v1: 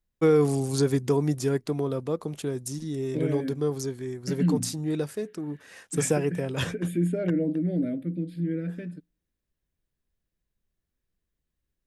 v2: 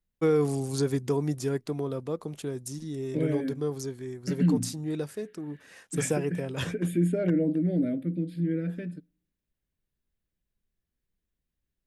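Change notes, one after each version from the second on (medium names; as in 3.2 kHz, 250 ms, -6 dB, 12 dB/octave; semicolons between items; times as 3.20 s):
first voice -3.5 dB; second voice: send +8.5 dB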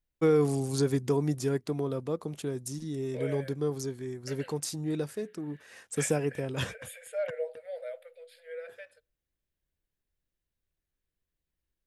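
second voice: add brick-wall FIR high-pass 460 Hz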